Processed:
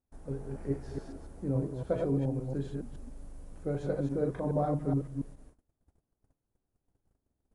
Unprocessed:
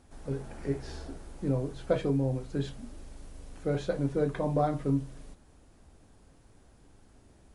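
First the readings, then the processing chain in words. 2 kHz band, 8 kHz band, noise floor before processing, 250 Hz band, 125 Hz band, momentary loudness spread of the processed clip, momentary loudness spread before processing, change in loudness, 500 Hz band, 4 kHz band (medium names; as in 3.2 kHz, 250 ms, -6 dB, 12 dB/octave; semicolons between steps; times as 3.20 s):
-7.5 dB, no reading, -59 dBFS, -1.5 dB, -1.0 dB, 16 LU, 18 LU, -2.0 dB, -2.0 dB, under -10 dB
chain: chunks repeated in reverse 141 ms, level -3 dB; gate -51 dBFS, range -24 dB; peaking EQ 3.6 kHz -11 dB 2.4 oct; trim -3 dB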